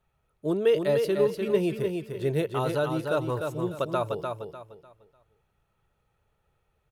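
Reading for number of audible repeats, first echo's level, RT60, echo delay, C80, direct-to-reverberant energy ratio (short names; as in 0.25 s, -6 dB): 3, -5.0 dB, none, 0.299 s, none, none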